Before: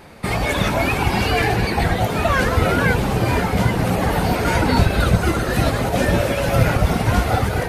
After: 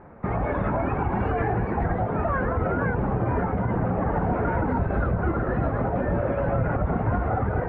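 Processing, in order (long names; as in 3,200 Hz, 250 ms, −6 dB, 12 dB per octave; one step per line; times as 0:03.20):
low-pass filter 1,500 Hz 24 dB per octave
brickwall limiter −12 dBFS, peak gain reduction 8.5 dB
level −3.5 dB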